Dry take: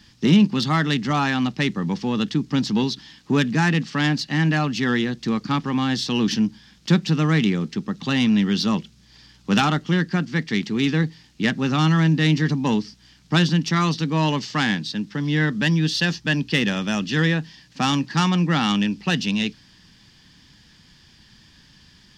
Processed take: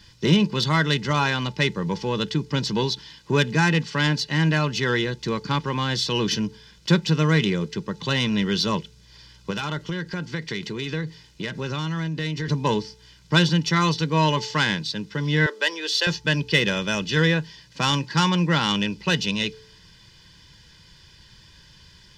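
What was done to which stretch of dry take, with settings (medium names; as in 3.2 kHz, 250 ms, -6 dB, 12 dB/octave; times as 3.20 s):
9.50–12.48 s: compression 12:1, threshold -23 dBFS
15.46–16.07 s: steep high-pass 370 Hz
whole clip: comb 2 ms, depth 69%; de-hum 437.9 Hz, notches 2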